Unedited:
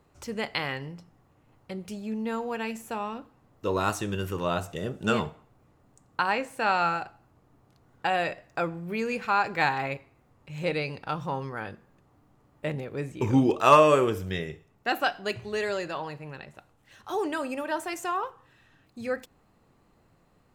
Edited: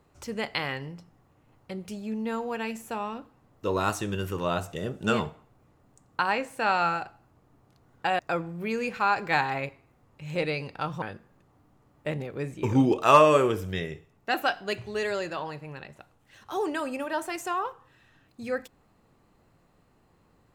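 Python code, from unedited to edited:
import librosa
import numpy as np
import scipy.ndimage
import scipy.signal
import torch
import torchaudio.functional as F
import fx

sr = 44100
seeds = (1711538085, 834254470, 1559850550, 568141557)

y = fx.edit(x, sr, fx.cut(start_s=8.19, length_s=0.28),
    fx.cut(start_s=11.3, length_s=0.3), tone=tone)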